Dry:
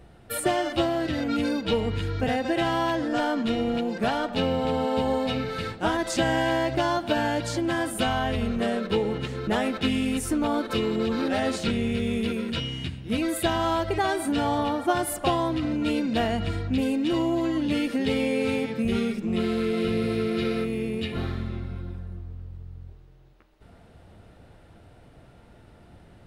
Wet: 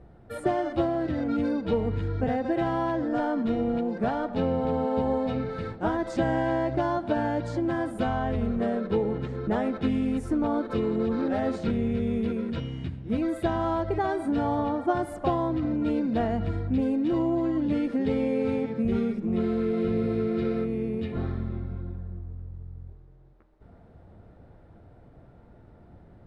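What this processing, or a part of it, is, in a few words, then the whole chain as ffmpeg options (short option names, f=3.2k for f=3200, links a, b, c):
through cloth: -af "lowpass=9.3k,highshelf=f=2.2k:g=-17.5,equalizer=f=2.8k:w=3.9:g=-5"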